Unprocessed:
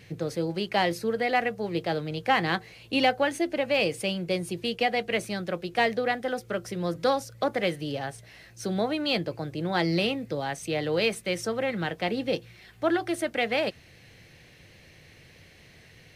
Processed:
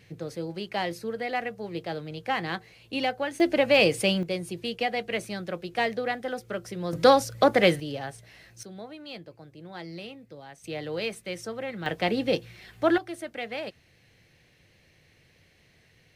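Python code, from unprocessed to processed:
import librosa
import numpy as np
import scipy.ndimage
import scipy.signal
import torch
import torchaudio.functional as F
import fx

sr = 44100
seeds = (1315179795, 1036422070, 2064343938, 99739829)

y = fx.gain(x, sr, db=fx.steps((0.0, -5.0), (3.4, 5.0), (4.23, -2.5), (6.93, 7.0), (7.8, -2.0), (8.63, -14.5), (10.64, -6.0), (11.86, 2.5), (12.98, -8.0)))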